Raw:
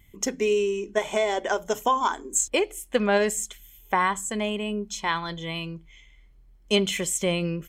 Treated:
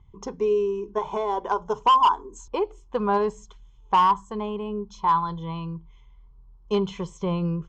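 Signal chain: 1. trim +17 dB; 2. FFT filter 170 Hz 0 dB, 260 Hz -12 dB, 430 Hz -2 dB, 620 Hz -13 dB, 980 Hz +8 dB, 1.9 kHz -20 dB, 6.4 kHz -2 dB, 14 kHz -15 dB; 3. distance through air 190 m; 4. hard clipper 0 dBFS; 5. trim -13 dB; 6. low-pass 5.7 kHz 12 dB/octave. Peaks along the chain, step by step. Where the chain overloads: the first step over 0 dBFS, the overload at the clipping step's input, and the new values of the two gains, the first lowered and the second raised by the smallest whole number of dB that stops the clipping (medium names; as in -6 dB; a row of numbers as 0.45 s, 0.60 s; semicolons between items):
+9.0 dBFS, +9.0 dBFS, +8.0 dBFS, 0.0 dBFS, -13.0 dBFS, -12.5 dBFS; step 1, 8.0 dB; step 1 +9 dB, step 5 -5 dB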